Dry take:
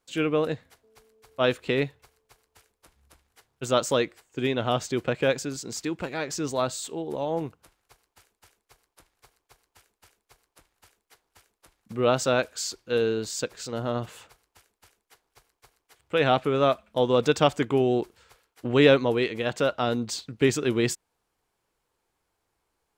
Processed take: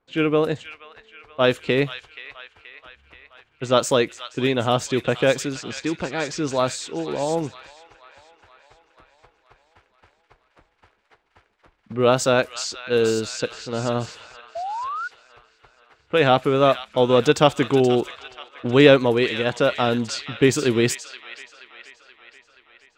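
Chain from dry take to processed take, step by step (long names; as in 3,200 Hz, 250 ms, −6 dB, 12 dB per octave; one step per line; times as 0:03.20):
delay with a high-pass on its return 478 ms, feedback 63%, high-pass 1,700 Hz, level −8.5 dB
sound drawn into the spectrogram rise, 0:14.55–0:15.08, 650–1,500 Hz −33 dBFS
low-pass that shuts in the quiet parts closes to 2,100 Hz, open at −21.5 dBFS
level +5 dB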